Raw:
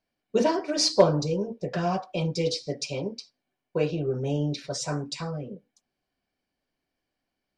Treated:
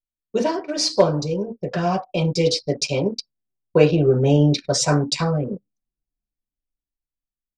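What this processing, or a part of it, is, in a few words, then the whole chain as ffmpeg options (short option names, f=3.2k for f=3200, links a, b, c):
voice memo with heavy noise removal: -af "anlmdn=0.398,dynaudnorm=f=390:g=9:m=12dB,volume=1.5dB"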